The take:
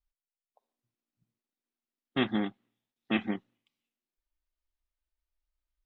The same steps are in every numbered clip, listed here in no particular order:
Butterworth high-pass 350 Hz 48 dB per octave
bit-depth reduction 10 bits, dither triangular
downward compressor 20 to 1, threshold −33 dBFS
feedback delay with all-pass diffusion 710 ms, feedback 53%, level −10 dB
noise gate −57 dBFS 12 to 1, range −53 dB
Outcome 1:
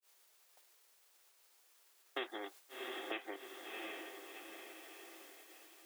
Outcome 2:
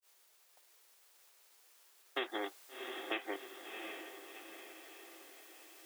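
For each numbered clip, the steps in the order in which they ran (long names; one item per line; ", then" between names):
feedback delay with all-pass diffusion, then bit-depth reduction, then downward compressor, then Butterworth high-pass, then noise gate
bit-depth reduction, then feedback delay with all-pass diffusion, then noise gate, then Butterworth high-pass, then downward compressor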